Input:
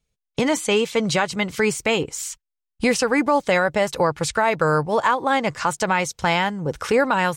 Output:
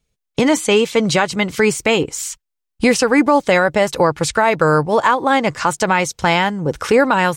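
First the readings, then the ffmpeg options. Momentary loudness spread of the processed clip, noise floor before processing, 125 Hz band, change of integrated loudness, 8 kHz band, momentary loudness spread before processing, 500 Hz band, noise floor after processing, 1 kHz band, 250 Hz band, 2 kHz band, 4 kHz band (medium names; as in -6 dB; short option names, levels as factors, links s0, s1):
6 LU, -83 dBFS, +5.0 dB, +5.0 dB, +4.5 dB, 6 LU, +5.5 dB, -78 dBFS, +4.5 dB, +6.5 dB, +4.5 dB, +4.5 dB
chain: -af "equalizer=f=310:t=o:w=0.77:g=3,volume=1.68"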